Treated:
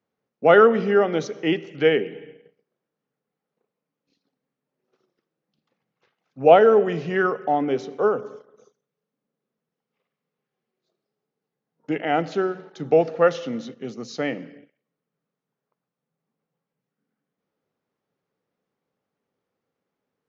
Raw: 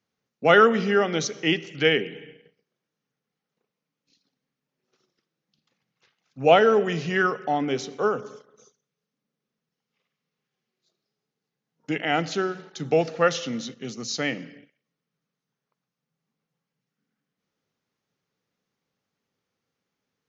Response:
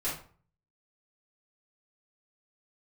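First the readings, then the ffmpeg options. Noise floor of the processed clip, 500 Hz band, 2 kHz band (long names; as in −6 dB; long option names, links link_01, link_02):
below −85 dBFS, +4.0 dB, −2.0 dB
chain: -af "lowpass=frequency=2700:poles=1,equalizer=frequency=530:width=0.49:gain=8,volume=-3.5dB"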